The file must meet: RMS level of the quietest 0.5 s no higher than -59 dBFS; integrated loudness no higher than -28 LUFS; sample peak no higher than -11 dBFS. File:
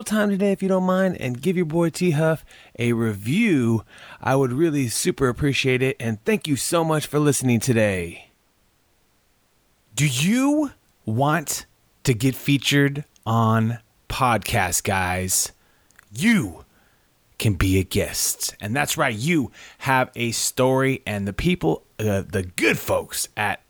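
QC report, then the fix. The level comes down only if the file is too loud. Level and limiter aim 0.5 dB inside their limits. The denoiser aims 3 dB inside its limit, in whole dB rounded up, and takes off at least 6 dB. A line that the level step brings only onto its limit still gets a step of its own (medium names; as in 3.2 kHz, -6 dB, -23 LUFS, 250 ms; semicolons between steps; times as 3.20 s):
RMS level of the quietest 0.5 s -63 dBFS: pass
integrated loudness -21.5 LUFS: fail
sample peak -4.5 dBFS: fail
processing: trim -7 dB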